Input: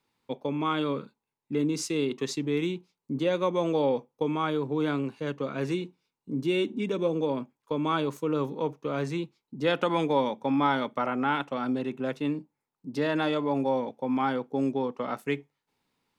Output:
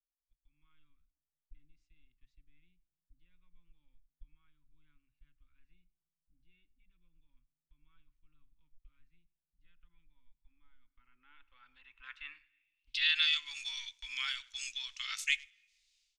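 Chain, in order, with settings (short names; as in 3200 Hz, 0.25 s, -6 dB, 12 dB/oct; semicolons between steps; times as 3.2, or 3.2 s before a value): AGC gain up to 16 dB; speakerphone echo 0.1 s, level -23 dB; gate -29 dBFS, range -10 dB; inverse Chebyshev band-stop 130–710 Hz, stop band 70 dB; low shelf 470 Hz +6.5 dB; on a send at -20 dB: reverb RT60 1.2 s, pre-delay 3 ms; on the sum: dynamic EQ 4600 Hz, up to -8 dB, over -41 dBFS, Q 0.81; low-pass sweep 190 Hz -> 6600 Hz, 10.75–13.49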